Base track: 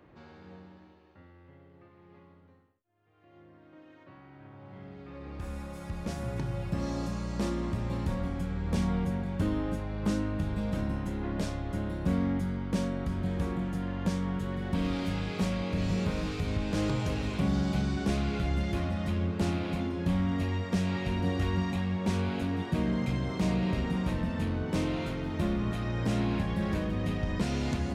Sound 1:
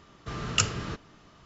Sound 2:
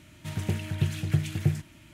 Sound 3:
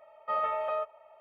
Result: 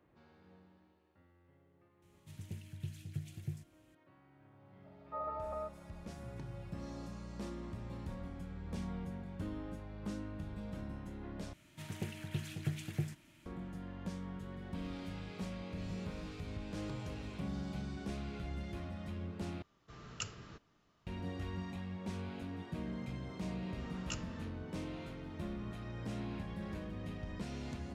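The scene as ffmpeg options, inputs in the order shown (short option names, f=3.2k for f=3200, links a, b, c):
-filter_complex "[2:a]asplit=2[a][b];[1:a]asplit=2[c][d];[0:a]volume=-12.5dB[e];[a]equalizer=f=960:w=0.38:g=-10[f];[3:a]lowpass=f=1.3k:w=0.5412,lowpass=f=1.3k:w=1.3066[g];[b]equalizer=f=73:w=1.5:g=-12[h];[d]flanger=delay=15.5:depth=7.9:speed=1.7[i];[e]asplit=3[j][k][l];[j]atrim=end=11.534[m];[h]atrim=end=1.93,asetpts=PTS-STARTPTS,volume=-9dB[n];[k]atrim=start=13.456:end=19.624[o];[c]atrim=end=1.45,asetpts=PTS-STARTPTS,volume=-17.5dB[p];[l]atrim=start=21.066[q];[f]atrim=end=1.93,asetpts=PTS-STARTPTS,volume=-15dB,afade=t=in:d=0.004:c=hsin,afade=t=out:st=1.926:d=0.004:c=hsin,adelay=2020[r];[g]atrim=end=1.2,asetpts=PTS-STARTPTS,volume=-9dB,afade=t=in:d=0.004:c=hsin,afade=t=out:st=1.196:d=0.004:c=hsin,adelay=4840[s];[i]atrim=end=1.45,asetpts=PTS-STARTPTS,volume=-16dB,afade=t=in:d=0.004:c=hsin,afade=t=out:st=1.446:d=0.004:c=hsin,adelay=23520[t];[m][n]acrossfade=d=0.004:c1=hsin:c2=hsin[u];[u][o]acrossfade=d=0.004:c1=hsin:c2=hsin[v];[v][p]acrossfade=d=0.004:c1=hsin:c2=hsin[w];[w][q]acrossfade=d=0.004:c1=hsin:c2=hsin[x];[x][r][s][t]amix=inputs=4:normalize=0"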